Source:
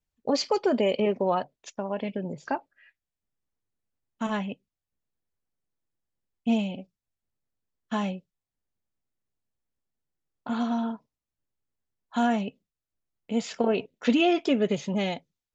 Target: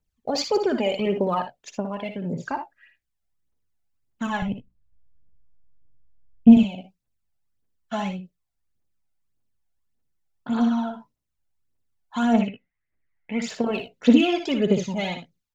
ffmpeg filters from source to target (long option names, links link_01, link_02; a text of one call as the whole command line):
ffmpeg -i in.wav -filter_complex "[0:a]asettb=1/sr,asplit=3[link_01][link_02][link_03];[link_01]atrim=end=4.424[link_04];[link_02]atrim=start=4.42:end=6.57,asetpts=PTS-STARTPTS,afade=type=in:duration=0.004:curve=qsin,afade=type=out:start_time=2.146:duration=0.004:curve=qsin,aemphasis=mode=reproduction:type=riaa[link_05];[link_03]atrim=start=6.566[link_06];[link_04][link_05]acrossfade=duration=0.004:curve1=hsin:curve2=qsin[link_07];[link_07][link_06]acrossfade=duration=0.004:curve1=qsin:curve2=hsin,aphaser=in_gain=1:out_gain=1:delay=1.5:decay=0.62:speed=1.7:type=triangular,asettb=1/sr,asplit=3[link_08][link_09][link_10];[link_08]atrim=end=12.414[link_11];[link_09]atrim=start=12.41:end=13.42,asetpts=PTS-STARTPTS,afade=type=in:duration=0.004:curve=qsin,afade=type=out:start_time=1.006:duration=0.004:curve=qsin,lowpass=frequency=2000:width_type=q:width=10[link_12];[link_10]atrim=start=13.416[link_13];[link_11][link_12]acrossfade=duration=0.004:curve1=hsin:curve2=qsin[link_14];[link_14][link_13]acrossfade=duration=0.004:curve1=qsin:curve2=hsin,asplit=2[link_15][link_16];[link_16]aecho=0:1:60|77:0.376|0.188[link_17];[link_15][link_17]amix=inputs=2:normalize=0" out.wav